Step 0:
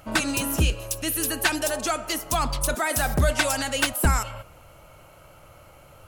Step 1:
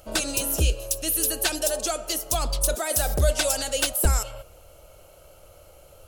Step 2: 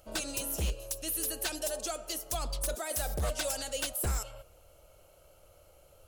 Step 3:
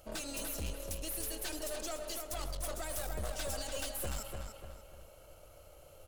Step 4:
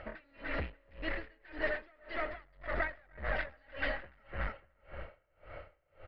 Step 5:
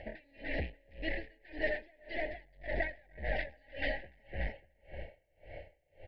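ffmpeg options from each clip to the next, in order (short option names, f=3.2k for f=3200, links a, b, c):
-af "equalizer=f=125:t=o:w=1:g=-10,equalizer=f=250:t=o:w=1:g=-10,equalizer=f=500:t=o:w=1:g=4,equalizer=f=1k:t=o:w=1:g=-10,equalizer=f=2k:t=o:w=1:g=-10,volume=3.5dB"
-af "aeval=exprs='0.158*(abs(mod(val(0)/0.158+3,4)-2)-1)':c=same,volume=-9dB"
-filter_complex "[0:a]alimiter=level_in=5.5dB:limit=-24dB:level=0:latency=1:release=261,volume=-5.5dB,aeval=exprs='(tanh(100*val(0)+0.5)-tanh(0.5))/100':c=same,asplit=2[a][b];[b]adelay=294,lowpass=f=4.7k:p=1,volume=-5dB,asplit=2[c][d];[d]adelay=294,lowpass=f=4.7k:p=1,volume=0.42,asplit=2[e][f];[f]adelay=294,lowpass=f=4.7k:p=1,volume=0.42,asplit=2[g][h];[h]adelay=294,lowpass=f=4.7k:p=1,volume=0.42,asplit=2[i][j];[j]adelay=294,lowpass=f=4.7k:p=1,volume=0.42[k];[c][e][g][i][k]amix=inputs=5:normalize=0[l];[a][l]amix=inputs=2:normalize=0,volume=3.5dB"
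-af "aresample=11025,asoftclip=type=tanh:threshold=-37.5dB,aresample=44100,lowpass=f=1.9k:t=q:w=6.7,aeval=exprs='val(0)*pow(10,-33*(0.5-0.5*cos(2*PI*1.8*n/s))/20)':c=same,volume=10dB"
-af "asuperstop=centerf=1200:order=8:qfactor=1.4,volume=1dB"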